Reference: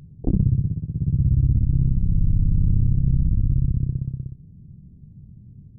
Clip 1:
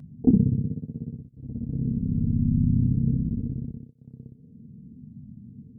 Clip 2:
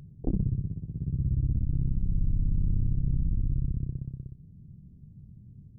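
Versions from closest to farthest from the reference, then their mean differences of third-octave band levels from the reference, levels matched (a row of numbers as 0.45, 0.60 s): 2, 1; 1.0, 2.5 dB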